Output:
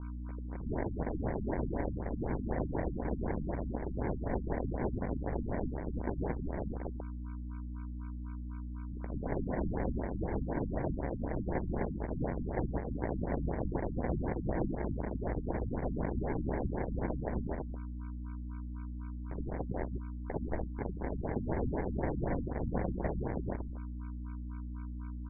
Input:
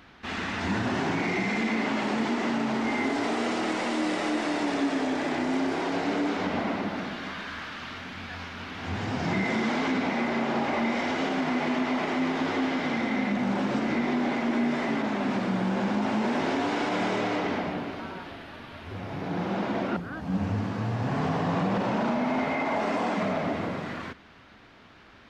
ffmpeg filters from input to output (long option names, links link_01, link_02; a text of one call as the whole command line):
ffmpeg -i in.wav -filter_complex "[0:a]acrusher=bits=3:mix=0:aa=0.000001,aeval=exprs='val(0)*sin(2*PI*89*n/s)':channel_layout=same,aphaser=in_gain=1:out_gain=1:delay=1.1:decay=0.42:speed=1:type=triangular,aeval=exprs='0.0355*(abs(mod(val(0)/0.0355+3,4)-2)-1)':channel_layout=same,equalizer=frequency=180:width=0.49:gain=-10,aeval=exprs='val(0)+0.00501*(sin(2*PI*60*n/s)+sin(2*PI*2*60*n/s)/2+sin(2*PI*3*60*n/s)/3+sin(2*PI*4*60*n/s)/4+sin(2*PI*5*60*n/s)/5)':channel_layout=same,asplit=2[link_01][link_02];[link_02]adelay=13,volume=-5dB[link_03];[link_01][link_03]amix=inputs=2:normalize=0,acrusher=samples=35:mix=1:aa=0.000001,highshelf=frequency=3200:gain=-7.5,afftfilt=real='re*lt(b*sr/1024,280*pow(2500/280,0.5+0.5*sin(2*PI*4*pts/sr)))':imag='im*lt(b*sr/1024,280*pow(2500/280,0.5+0.5*sin(2*PI*4*pts/sr)))':win_size=1024:overlap=0.75,volume=6dB" out.wav